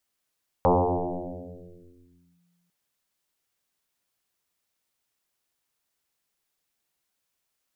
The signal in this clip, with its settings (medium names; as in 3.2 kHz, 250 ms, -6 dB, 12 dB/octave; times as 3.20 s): FM tone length 2.05 s, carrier 174 Hz, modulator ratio 0.51, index 9.3, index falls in 1.77 s linear, decay 2.14 s, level -15 dB